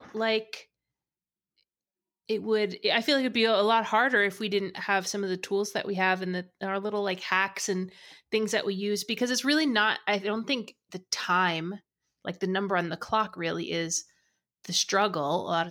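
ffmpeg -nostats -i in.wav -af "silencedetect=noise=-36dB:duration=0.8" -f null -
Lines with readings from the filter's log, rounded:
silence_start: 0.58
silence_end: 2.29 | silence_duration: 1.71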